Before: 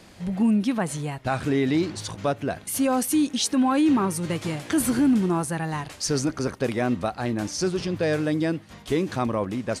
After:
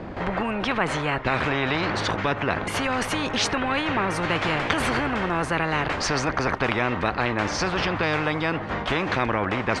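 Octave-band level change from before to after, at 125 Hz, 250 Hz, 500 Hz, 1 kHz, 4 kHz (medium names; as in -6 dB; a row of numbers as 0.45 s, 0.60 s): 0.0 dB, -5.5 dB, +0.5 dB, +5.5 dB, +5.0 dB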